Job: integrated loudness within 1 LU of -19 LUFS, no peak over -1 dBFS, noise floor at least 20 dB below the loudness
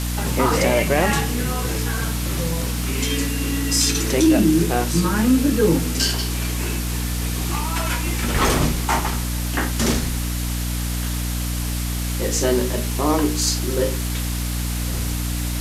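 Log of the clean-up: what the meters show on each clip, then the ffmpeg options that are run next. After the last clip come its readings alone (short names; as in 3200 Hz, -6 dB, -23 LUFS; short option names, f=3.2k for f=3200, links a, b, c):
hum 60 Hz; harmonics up to 300 Hz; hum level -22 dBFS; noise floor -24 dBFS; noise floor target -41 dBFS; loudness -21.0 LUFS; peak -5.0 dBFS; loudness target -19.0 LUFS
-> -af "bandreject=f=60:t=h:w=4,bandreject=f=120:t=h:w=4,bandreject=f=180:t=h:w=4,bandreject=f=240:t=h:w=4,bandreject=f=300:t=h:w=4"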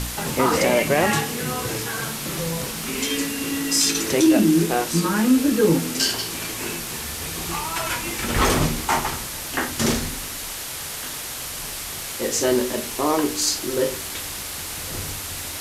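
hum none; noise floor -32 dBFS; noise floor target -43 dBFS
-> -af "afftdn=nr=11:nf=-32"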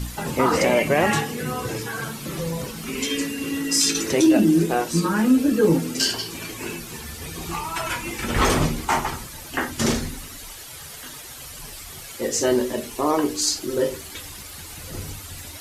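noise floor -39 dBFS; noise floor target -43 dBFS
-> -af "afftdn=nr=6:nf=-39"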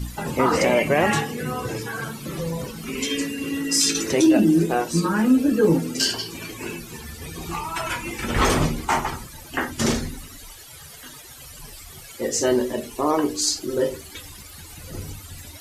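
noise floor -42 dBFS; noise floor target -43 dBFS
-> -af "afftdn=nr=6:nf=-42"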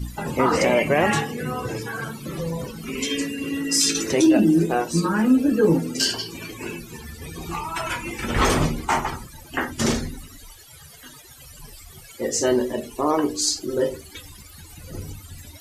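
noise floor -45 dBFS; loudness -22.5 LUFS; peak -7.0 dBFS; loudness target -19.0 LUFS
-> -af "volume=3.5dB"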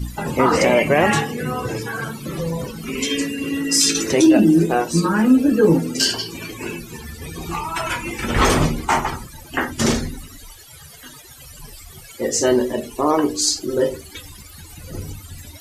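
loudness -19.0 LUFS; peak -3.5 dBFS; noise floor -42 dBFS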